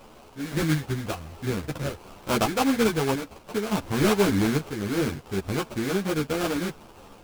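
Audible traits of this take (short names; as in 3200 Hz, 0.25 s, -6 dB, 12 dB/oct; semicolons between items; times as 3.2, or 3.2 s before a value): a quantiser's noise floor 8-bit, dither triangular; random-step tremolo; aliases and images of a low sample rate 1900 Hz, jitter 20%; a shimmering, thickened sound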